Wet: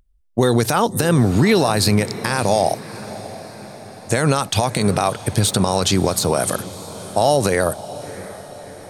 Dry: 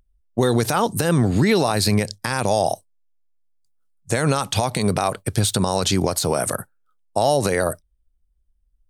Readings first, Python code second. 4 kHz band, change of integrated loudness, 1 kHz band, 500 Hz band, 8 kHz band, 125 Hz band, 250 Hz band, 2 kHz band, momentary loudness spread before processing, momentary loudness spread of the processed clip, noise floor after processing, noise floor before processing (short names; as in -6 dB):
+2.5 dB, +2.5 dB, +2.5 dB, +2.5 dB, +2.5 dB, +2.5 dB, +2.5 dB, +2.5 dB, 8 LU, 18 LU, -39 dBFS, -66 dBFS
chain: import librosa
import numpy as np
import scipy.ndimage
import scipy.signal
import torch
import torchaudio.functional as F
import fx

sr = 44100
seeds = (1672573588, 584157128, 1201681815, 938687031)

y = fx.echo_diffused(x, sr, ms=651, feedback_pct=58, wet_db=-15.5)
y = y * 10.0 ** (2.5 / 20.0)